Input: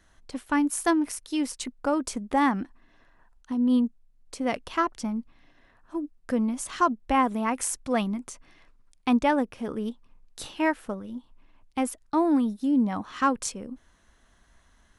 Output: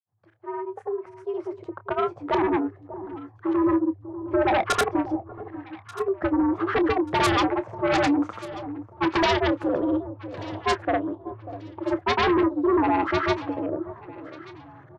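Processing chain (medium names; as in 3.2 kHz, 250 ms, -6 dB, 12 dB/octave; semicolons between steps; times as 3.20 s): fade-in on the opening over 4.38 s; low-pass that closes with the level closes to 2.6 kHz, closed at -22.5 dBFS; frequency shift +88 Hz; LFO low-pass saw up 2.5 Hz 600–1700 Hz; granulator 100 ms, grains 20 per s, pitch spread up and down by 0 st; in parallel at -7 dB: sine folder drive 14 dB, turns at -9.5 dBFS; on the sum: doubling 28 ms -13.5 dB; echo whose repeats swap between lows and highs 593 ms, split 940 Hz, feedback 50%, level -13 dB; trim -4.5 dB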